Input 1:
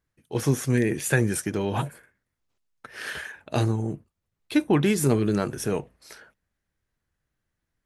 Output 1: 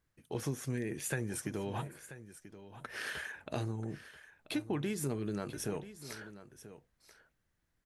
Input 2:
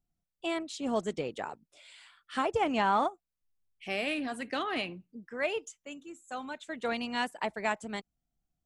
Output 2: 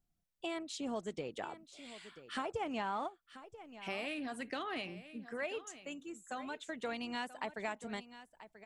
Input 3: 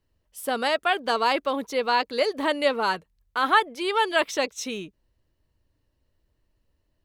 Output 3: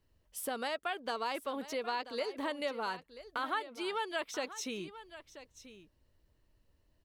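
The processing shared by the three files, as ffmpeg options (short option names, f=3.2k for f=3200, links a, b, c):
-af "acompressor=threshold=-40dB:ratio=2.5,aecho=1:1:985:0.188"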